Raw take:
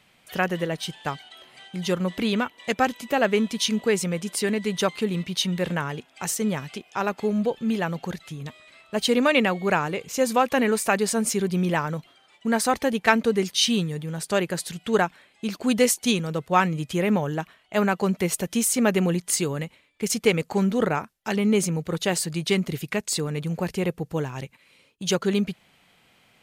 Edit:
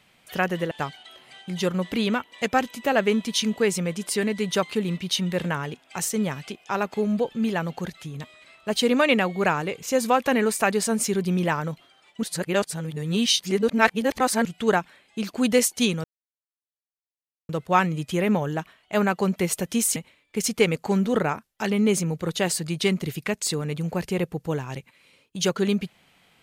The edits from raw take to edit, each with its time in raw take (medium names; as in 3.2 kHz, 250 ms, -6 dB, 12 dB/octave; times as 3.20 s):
0.71–0.97 s: delete
12.49–14.71 s: reverse
16.30 s: insert silence 1.45 s
18.77–19.62 s: delete